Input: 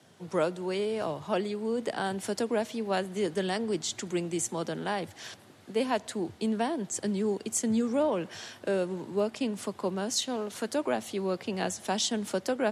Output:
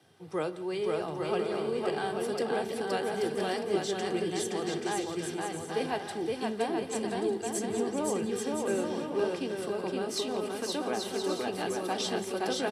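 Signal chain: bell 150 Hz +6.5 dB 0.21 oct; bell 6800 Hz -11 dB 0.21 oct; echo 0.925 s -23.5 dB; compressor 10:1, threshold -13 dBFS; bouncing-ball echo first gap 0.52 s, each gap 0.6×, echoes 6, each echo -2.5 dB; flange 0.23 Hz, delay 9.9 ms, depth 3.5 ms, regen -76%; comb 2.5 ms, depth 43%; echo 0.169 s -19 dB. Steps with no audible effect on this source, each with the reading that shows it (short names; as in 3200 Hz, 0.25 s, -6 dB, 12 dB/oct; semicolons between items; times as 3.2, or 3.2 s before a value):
compressor, threshold -13 dBFS: input peak -15.0 dBFS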